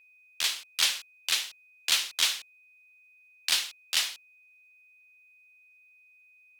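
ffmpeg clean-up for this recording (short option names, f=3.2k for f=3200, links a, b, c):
-af "bandreject=f=2.5k:w=30"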